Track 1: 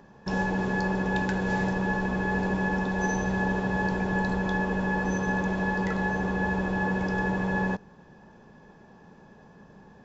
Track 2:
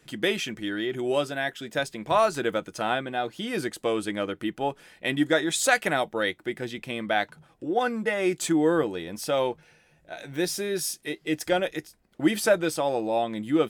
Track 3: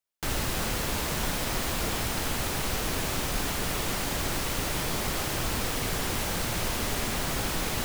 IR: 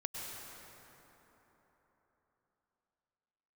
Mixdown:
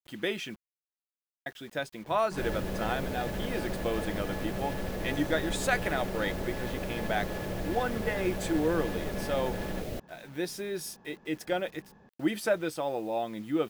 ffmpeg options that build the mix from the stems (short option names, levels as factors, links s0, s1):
-filter_complex "[0:a]aeval=exprs='(tanh(50.1*val(0)+0.4)-tanh(0.4))/50.1':c=same,adelay=2050,volume=0.631[s0];[1:a]acrusher=bits=7:mix=0:aa=0.000001,volume=0.501,asplit=3[s1][s2][s3];[s1]atrim=end=0.56,asetpts=PTS-STARTPTS,afade=t=out:st=0.556:d=0.004:c=hsin[s4];[s2]atrim=start=0.56:end=1.46,asetpts=PTS-STARTPTS,volume=0[s5];[s3]atrim=start=1.46,asetpts=PTS-STARTPTS,afade=t=in:d=0.004:c=hsin[s6];[s4][s5][s6]concat=n=3:v=0:a=1[s7];[2:a]lowshelf=f=760:t=q:w=3:g=8,adelay=2150,volume=0.224[s8];[s0][s7][s8]amix=inputs=3:normalize=0,equalizer=f=7900:t=o:w=1.6:g=-5"